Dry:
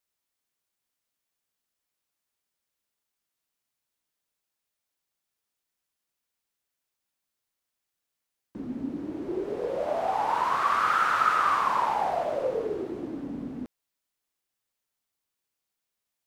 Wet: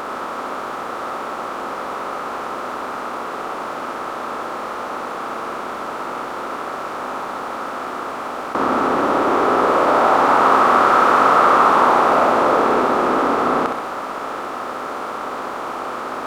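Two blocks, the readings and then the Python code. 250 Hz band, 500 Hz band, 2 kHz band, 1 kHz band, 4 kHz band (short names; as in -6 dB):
+13.5 dB, +14.0 dB, +12.0 dB, +13.0 dB, +12.5 dB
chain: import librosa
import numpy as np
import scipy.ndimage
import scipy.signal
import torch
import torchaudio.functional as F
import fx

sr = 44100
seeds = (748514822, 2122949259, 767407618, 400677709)

p1 = fx.bin_compress(x, sr, power=0.2)
p2 = p1 + fx.room_flutter(p1, sr, wall_m=10.9, rt60_s=0.7, dry=0)
y = p2 * 10.0 ** (1.5 / 20.0)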